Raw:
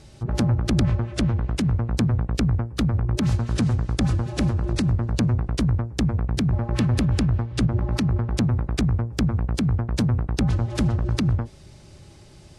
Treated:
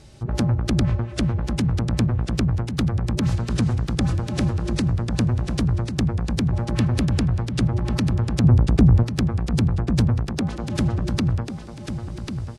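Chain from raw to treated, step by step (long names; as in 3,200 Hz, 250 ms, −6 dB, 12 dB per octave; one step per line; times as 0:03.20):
0:08.44–0:09.03: tilt shelving filter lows +8 dB, about 1,400 Hz
0:10.29–0:10.76: elliptic high-pass filter 160 Hz
repeating echo 1,094 ms, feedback 32%, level −8 dB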